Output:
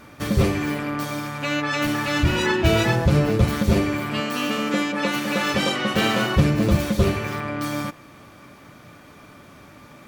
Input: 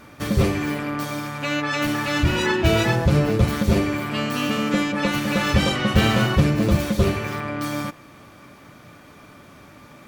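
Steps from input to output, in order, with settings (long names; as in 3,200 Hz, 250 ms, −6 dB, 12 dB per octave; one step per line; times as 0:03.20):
0:04.20–0:06.36: high-pass filter 220 Hz 12 dB per octave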